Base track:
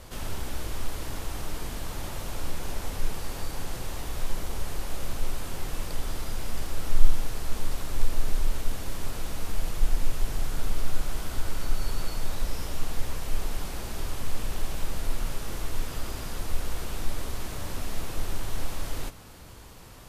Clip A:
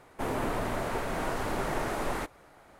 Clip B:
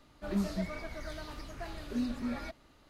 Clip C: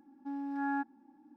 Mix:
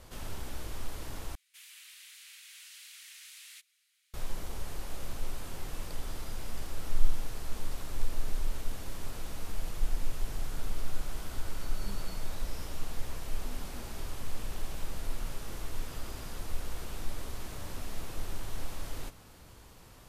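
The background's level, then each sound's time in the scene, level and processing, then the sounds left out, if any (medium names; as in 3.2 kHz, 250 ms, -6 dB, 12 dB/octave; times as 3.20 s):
base track -6.5 dB
1.35 s: replace with A -3.5 dB + inverse Chebyshev high-pass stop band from 620 Hz, stop band 70 dB
11.51 s: add B -17.5 dB
not used: C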